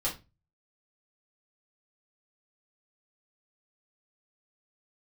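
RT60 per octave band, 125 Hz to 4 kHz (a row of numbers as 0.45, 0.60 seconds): 0.55, 0.35, 0.30, 0.25, 0.25, 0.25 seconds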